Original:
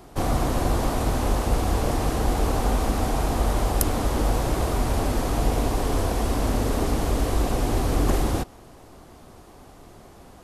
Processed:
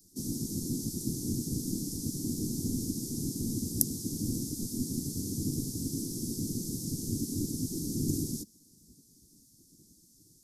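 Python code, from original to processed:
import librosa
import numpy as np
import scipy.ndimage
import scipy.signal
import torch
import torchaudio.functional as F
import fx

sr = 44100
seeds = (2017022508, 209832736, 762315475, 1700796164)

y = fx.spec_gate(x, sr, threshold_db=-10, keep='weak')
y = scipy.signal.sosfilt(scipy.signal.ellip(3, 1.0, 40, [290.0, 5400.0], 'bandstop', fs=sr, output='sos'), y)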